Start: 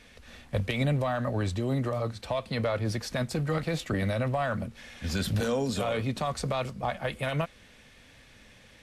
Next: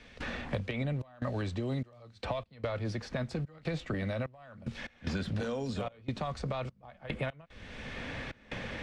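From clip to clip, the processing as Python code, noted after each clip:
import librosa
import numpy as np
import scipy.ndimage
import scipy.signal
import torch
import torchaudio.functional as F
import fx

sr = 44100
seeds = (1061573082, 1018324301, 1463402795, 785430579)

y = fx.step_gate(x, sr, bpm=74, pattern='.xxxx.xxx..x', floor_db=-24.0, edge_ms=4.5)
y = fx.air_absorb(y, sr, metres=97.0)
y = fx.band_squash(y, sr, depth_pct=100)
y = y * 10.0 ** (-5.0 / 20.0)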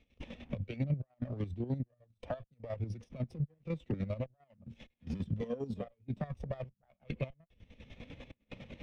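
y = fx.lower_of_two(x, sr, delay_ms=0.33)
y = fx.chopper(y, sr, hz=10.0, depth_pct=65, duty_pct=40)
y = fx.spectral_expand(y, sr, expansion=1.5)
y = y * 10.0 ** (-2.5 / 20.0)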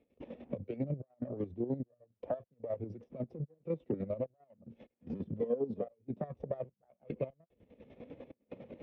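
y = fx.bandpass_q(x, sr, hz=430.0, q=1.4)
y = y * 10.0 ** (6.5 / 20.0)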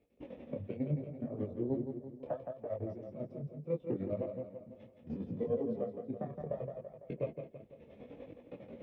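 y = fx.echo_feedback(x, sr, ms=167, feedback_pct=50, wet_db=-6.5)
y = fx.detune_double(y, sr, cents=25)
y = y * 10.0 ** (3.0 / 20.0)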